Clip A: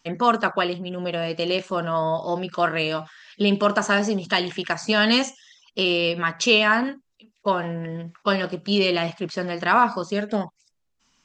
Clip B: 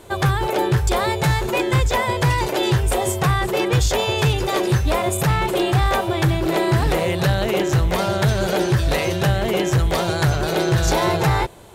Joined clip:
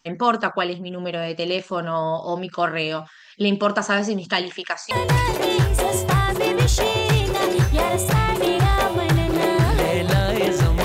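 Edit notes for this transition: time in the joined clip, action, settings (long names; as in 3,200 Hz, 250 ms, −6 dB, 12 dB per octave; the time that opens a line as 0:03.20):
clip A
0:04.42–0:04.91: high-pass filter 220 Hz → 1,000 Hz
0:04.91: continue with clip B from 0:02.04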